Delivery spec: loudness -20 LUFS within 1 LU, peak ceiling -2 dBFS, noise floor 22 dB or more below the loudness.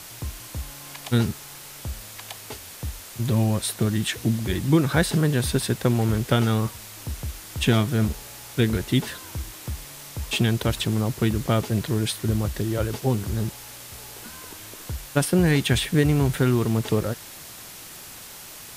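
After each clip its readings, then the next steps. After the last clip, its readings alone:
noise floor -42 dBFS; noise floor target -46 dBFS; loudness -24.0 LUFS; peak -7.5 dBFS; loudness target -20.0 LUFS
-> noise print and reduce 6 dB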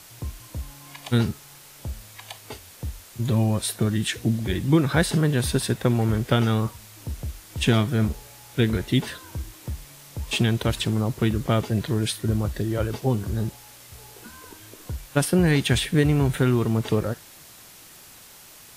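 noise floor -47 dBFS; loudness -23.5 LUFS; peak -7.5 dBFS; loudness target -20.0 LUFS
-> gain +3.5 dB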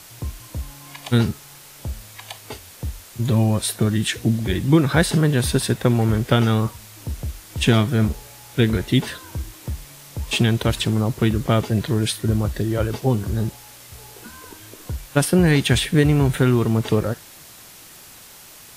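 loudness -20.0 LUFS; peak -4.0 dBFS; noise floor -44 dBFS

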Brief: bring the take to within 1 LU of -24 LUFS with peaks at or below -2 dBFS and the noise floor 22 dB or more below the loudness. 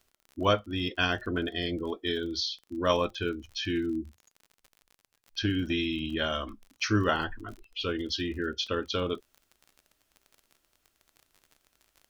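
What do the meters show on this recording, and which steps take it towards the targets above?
ticks 41/s; loudness -30.5 LUFS; peak -9.5 dBFS; loudness target -24.0 LUFS
-> de-click; gain +6.5 dB

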